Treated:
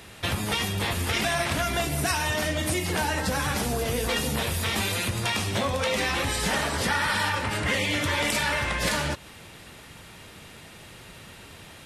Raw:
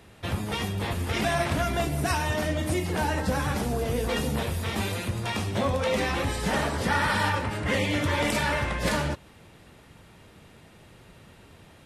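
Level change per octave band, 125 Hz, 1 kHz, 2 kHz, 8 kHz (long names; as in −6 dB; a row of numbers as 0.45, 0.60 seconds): −1.5, 0.0, +3.0, +6.5 decibels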